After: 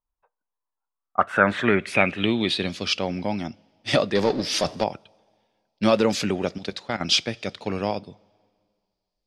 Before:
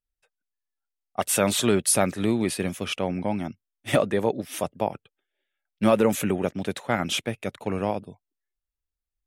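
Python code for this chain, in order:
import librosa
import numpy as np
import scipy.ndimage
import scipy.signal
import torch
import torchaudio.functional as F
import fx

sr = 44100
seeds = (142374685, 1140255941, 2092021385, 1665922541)

y = fx.high_shelf(x, sr, hz=4600.0, db=4.0)
y = fx.level_steps(y, sr, step_db=13, at=(6.58, 7.01))
y = fx.rev_double_slope(y, sr, seeds[0], early_s=0.25, late_s=2.1, knee_db=-18, drr_db=18.5)
y = fx.power_curve(y, sr, exponent=0.7, at=(4.15, 4.84))
y = fx.filter_sweep_lowpass(y, sr, from_hz=1000.0, to_hz=4800.0, start_s=0.85, end_s=2.86, q=6.2)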